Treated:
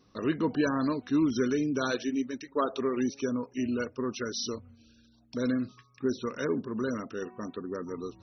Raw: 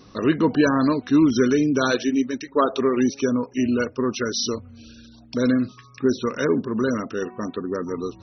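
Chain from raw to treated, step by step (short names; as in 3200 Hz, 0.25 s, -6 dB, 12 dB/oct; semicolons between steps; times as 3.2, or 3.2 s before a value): gate -42 dBFS, range -6 dB; gain -9 dB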